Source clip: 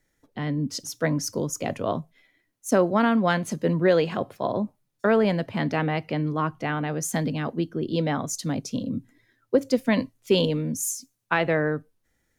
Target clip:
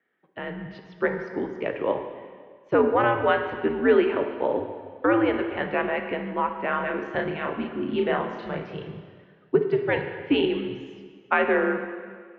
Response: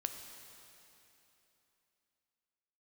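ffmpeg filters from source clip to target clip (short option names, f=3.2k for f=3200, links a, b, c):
-filter_complex "[0:a]asettb=1/sr,asplit=3[a][b][c];[a]atrim=end=6.694[d];[b]atrim=start=6.69:end=8.9,asetpts=PTS-STARTPTS,afade=t=in:d=0.004:c=qsin,afade=t=out:st=2.206:d=0.004:c=qsin,asplit=2[e][f];[f]adelay=34,volume=-3dB[g];[e][g]amix=inputs=2:normalize=0,atrim=end_sample=97461[h];[c]atrim=start=8.896[i];[d][h]acrossfade=d=0.004:c1=hsin:c2=qsin[j];[j][i]acrossfade=d=0.004:c1=qsin:c2=hsin[k];[1:a]atrim=start_sample=2205,asetrate=79380,aresample=44100[l];[k][l]afir=irnorm=-1:irlink=0,highpass=f=370:t=q:w=0.5412,highpass=f=370:t=q:w=1.307,lowpass=f=3k:t=q:w=0.5176,lowpass=f=3k:t=q:w=0.7071,lowpass=f=3k:t=q:w=1.932,afreqshift=-110,volume=8dB"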